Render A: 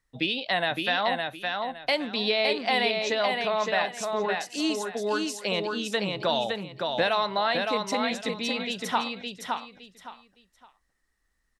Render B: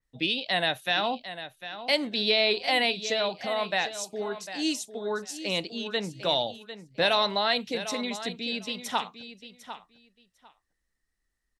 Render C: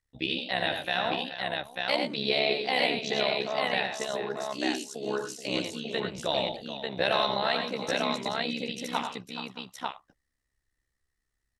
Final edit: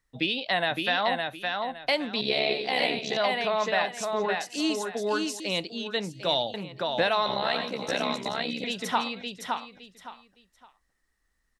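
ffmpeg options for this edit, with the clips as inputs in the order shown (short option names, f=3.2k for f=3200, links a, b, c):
-filter_complex "[2:a]asplit=2[a][b];[0:a]asplit=4[c][d][e][f];[c]atrim=end=2.212[g];[a]atrim=start=2.208:end=3.172[h];[d]atrim=start=3.168:end=5.402[i];[1:a]atrim=start=5.398:end=6.542[j];[e]atrim=start=6.538:end=7.262[k];[b]atrim=start=7.258:end=8.642[l];[f]atrim=start=8.638[m];[g][h]acrossfade=d=0.004:c1=hsin:c2=hsin[n];[n][i]acrossfade=d=0.004:c1=hsin:c2=hsin[o];[o][j]acrossfade=d=0.004:c1=hsin:c2=hsin[p];[p][k]acrossfade=d=0.004:c1=hsin:c2=hsin[q];[q][l]acrossfade=d=0.004:c1=hsin:c2=hsin[r];[r][m]acrossfade=d=0.004:c1=hsin:c2=hsin"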